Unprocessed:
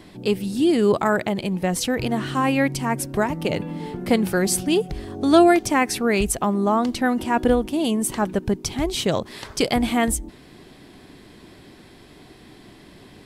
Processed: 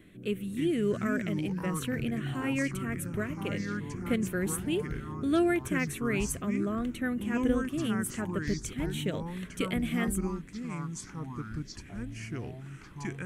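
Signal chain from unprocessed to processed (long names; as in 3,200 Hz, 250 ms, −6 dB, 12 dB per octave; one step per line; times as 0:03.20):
phaser with its sweep stopped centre 2,100 Hz, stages 4
delay with pitch and tempo change per echo 228 ms, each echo −5 semitones, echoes 2, each echo −6 dB
level −8.5 dB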